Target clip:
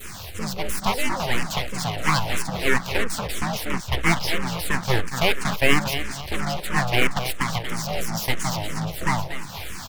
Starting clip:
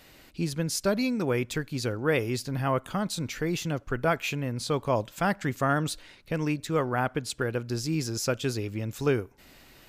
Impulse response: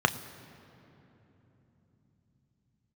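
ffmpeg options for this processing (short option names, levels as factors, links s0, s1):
-filter_complex "[0:a]acompressor=mode=upward:threshold=0.0251:ratio=2.5,adynamicequalizer=threshold=0.00794:dfrequency=1400:dqfactor=0.76:tfrequency=1400:tqfactor=0.76:attack=5:release=100:ratio=0.375:range=4:mode=boostabove:tftype=bell,asplit=2[s0][s1];[s1]aeval=exprs='0.0447*sin(PI/2*1.78*val(0)/0.0447)':c=same,volume=0.355[s2];[s0][s2]amix=inputs=2:normalize=0,afreqshift=52,aecho=1:1:236|472|708|944|1180:0.355|0.156|0.0687|0.0302|0.0133,acrossover=split=170[s3][s4];[s4]aeval=exprs='abs(val(0))':c=same[s5];[s3][s5]amix=inputs=2:normalize=0,asplit=2[s6][s7];[s7]afreqshift=-3[s8];[s6][s8]amix=inputs=2:normalize=1,volume=2.24"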